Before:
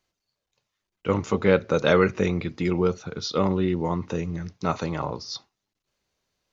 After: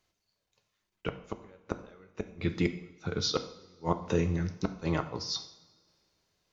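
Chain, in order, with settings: inverted gate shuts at -15 dBFS, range -38 dB; two-slope reverb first 0.61 s, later 2 s, from -18 dB, DRR 7.5 dB

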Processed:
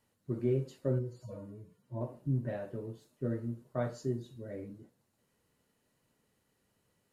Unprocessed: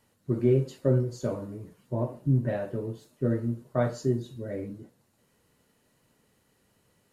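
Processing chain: 0.99–2.01 s: harmonic-percussive separation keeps harmonic; trim -8 dB

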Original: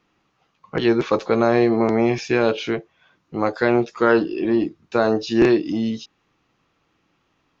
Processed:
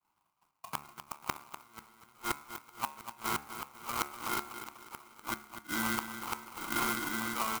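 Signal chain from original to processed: single-diode clipper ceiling -12 dBFS; resampled via 11.025 kHz; shuffle delay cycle 1376 ms, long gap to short 3:1, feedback 38%, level -5 dB; compression 2.5:1, threshold -26 dBFS, peak gain reduction 10 dB; sample-and-hold 25×; inverted gate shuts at -18 dBFS, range -33 dB; feedback delay 246 ms, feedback 36%, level -10.5 dB; expander -58 dBFS; resonant low shelf 720 Hz -10 dB, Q 3; de-hum 71.93 Hz, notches 38; sampling jitter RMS 0.052 ms; trim +1.5 dB

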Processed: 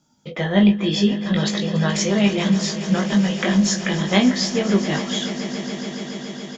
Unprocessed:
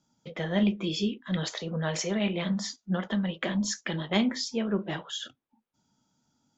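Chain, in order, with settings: doubling 20 ms -4 dB; echo with a slow build-up 141 ms, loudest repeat 5, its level -16 dB; trim +7.5 dB

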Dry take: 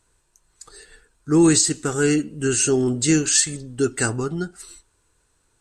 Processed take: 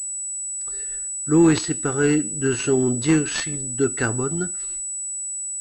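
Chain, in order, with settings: class-D stage that switches slowly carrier 7.9 kHz

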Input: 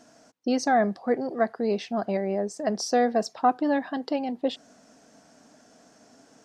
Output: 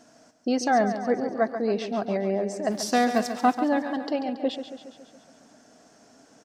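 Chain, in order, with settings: 2.70–3.52 s: formants flattened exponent 0.6; on a send: feedback delay 139 ms, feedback 58%, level -10 dB

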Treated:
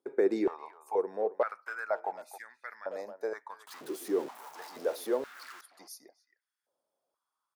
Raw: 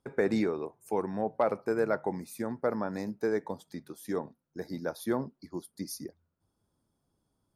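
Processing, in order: 3.67–5.61 s: jump at every zero crossing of -35 dBFS; speakerphone echo 270 ms, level -13 dB; step-sequenced high-pass 2.1 Hz 360–1800 Hz; trim -7 dB

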